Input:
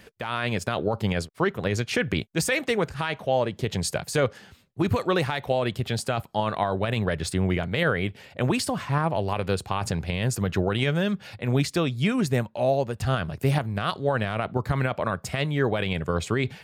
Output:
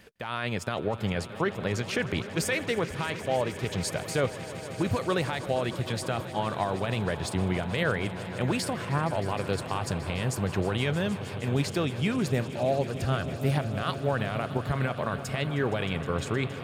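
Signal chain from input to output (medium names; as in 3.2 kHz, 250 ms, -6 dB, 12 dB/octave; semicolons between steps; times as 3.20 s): echo with a slow build-up 156 ms, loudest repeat 5, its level -17 dB; trim -4 dB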